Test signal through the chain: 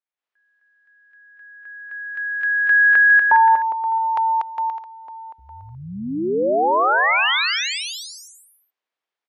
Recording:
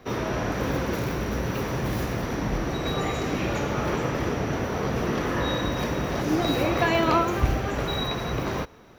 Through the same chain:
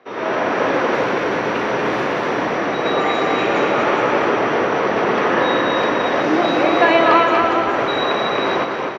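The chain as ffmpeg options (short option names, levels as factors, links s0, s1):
-af "dynaudnorm=f=130:g=3:m=3.35,highpass=390,lowpass=2900,aecho=1:1:240|408|525.6|607.9|665.5:0.631|0.398|0.251|0.158|0.1,volume=1.12"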